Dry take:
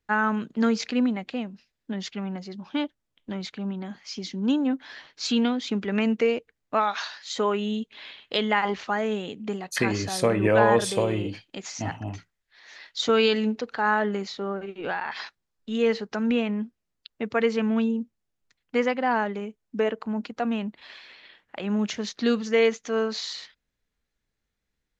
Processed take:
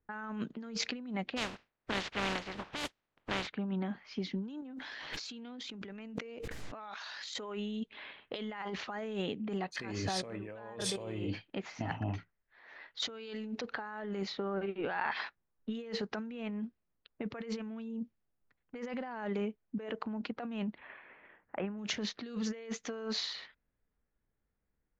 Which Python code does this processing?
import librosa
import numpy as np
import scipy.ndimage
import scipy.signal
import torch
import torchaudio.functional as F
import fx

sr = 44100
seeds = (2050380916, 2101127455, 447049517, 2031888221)

y = fx.spec_flatten(x, sr, power=0.26, at=(1.36, 3.46), fade=0.02)
y = fx.env_flatten(y, sr, amount_pct=100, at=(4.62, 7.34))
y = fx.cheby2_lowpass(y, sr, hz=6300.0, order=4, stop_db=50, at=(20.78, 21.78))
y = fx.env_lowpass(y, sr, base_hz=1400.0, full_db=-21.0)
y = fx.high_shelf(y, sr, hz=10000.0, db=-10.5)
y = fx.over_compress(y, sr, threshold_db=-32.0, ratio=-1.0)
y = y * 10.0 ** (-7.5 / 20.0)